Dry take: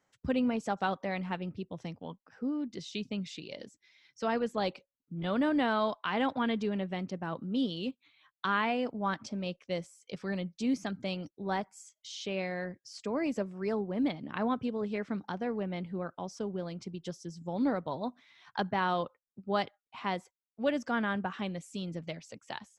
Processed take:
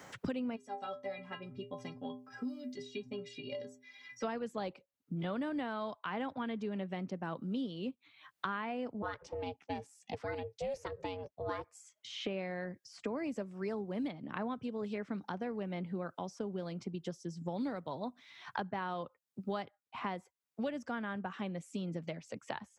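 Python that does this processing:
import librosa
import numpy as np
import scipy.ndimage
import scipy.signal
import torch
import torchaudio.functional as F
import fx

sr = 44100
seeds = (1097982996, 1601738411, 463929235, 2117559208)

y = fx.stiff_resonator(x, sr, f0_hz=120.0, decay_s=0.45, stiffness=0.03, at=(0.55, 4.23), fade=0.02)
y = fx.ring_mod(y, sr, carrier_hz=280.0, at=(9.02, 11.75))
y = scipy.signal.sosfilt(scipy.signal.butter(2, 63.0, 'highpass', fs=sr, output='sos'), y)
y = fx.dynamic_eq(y, sr, hz=4200.0, q=0.97, threshold_db=-54.0, ratio=4.0, max_db=-4)
y = fx.band_squash(y, sr, depth_pct=100)
y = y * 10.0 ** (-6.0 / 20.0)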